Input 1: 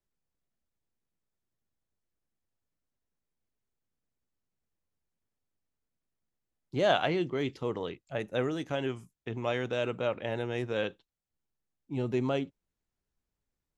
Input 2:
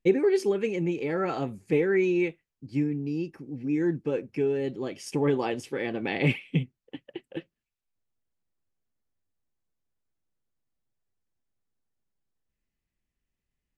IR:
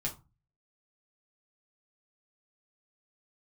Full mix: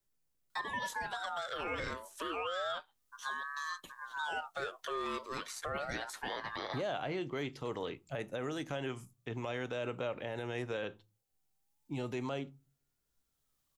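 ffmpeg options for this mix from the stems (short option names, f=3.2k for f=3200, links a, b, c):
-filter_complex "[0:a]volume=-1dB,asplit=3[a][b][c];[b]volume=-15dB[d];[1:a]tiltshelf=f=930:g=-9,aeval=exprs='val(0)*sin(2*PI*1100*n/s+1100*0.3/0.32*sin(2*PI*0.32*n/s))':c=same,adelay=500,volume=0dB[e];[c]apad=whole_len=629602[f];[e][f]sidechaincompress=threshold=-49dB:ratio=4:attack=44:release=856[g];[2:a]atrim=start_sample=2205[h];[d][h]afir=irnorm=-1:irlink=0[i];[a][g][i]amix=inputs=3:normalize=0,highshelf=f=5.5k:g=9,acrossover=split=550|2200[j][k][l];[j]acompressor=threshold=-38dB:ratio=4[m];[k]acompressor=threshold=-36dB:ratio=4[n];[l]acompressor=threshold=-48dB:ratio=4[o];[m][n][o]amix=inputs=3:normalize=0,alimiter=level_in=4dB:limit=-24dB:level=0:latency=1:release=41,volume=-4dB"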